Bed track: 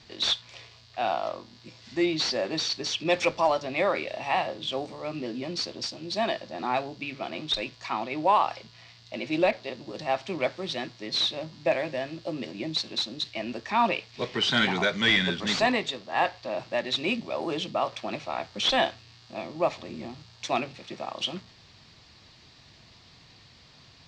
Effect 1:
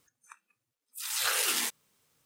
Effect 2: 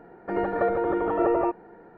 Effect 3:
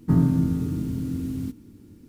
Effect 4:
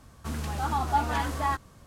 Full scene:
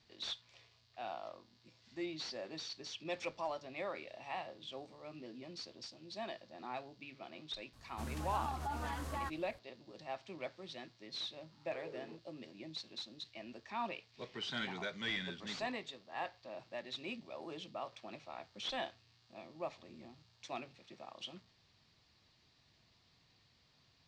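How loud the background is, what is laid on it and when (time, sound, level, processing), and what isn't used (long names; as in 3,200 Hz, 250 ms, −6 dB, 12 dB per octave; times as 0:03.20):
bed track −16.5 dB
0:07.73: mix in 4 −10 dB + brickwall limiter −21.5 dBFS
0:10.47: mix in 1 −10.5 dB + low-pass with resonance 440 Hz, resonance Q 2.4
not used: 2, 3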